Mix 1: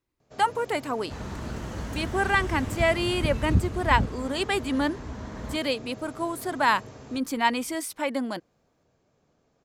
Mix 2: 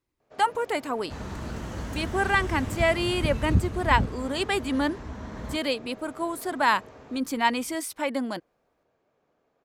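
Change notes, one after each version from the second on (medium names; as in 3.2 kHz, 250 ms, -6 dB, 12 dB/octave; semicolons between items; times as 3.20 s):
first sound: add tone controls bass -12 dB, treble -14 dB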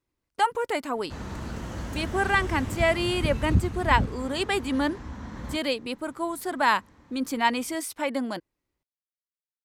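first sound: muted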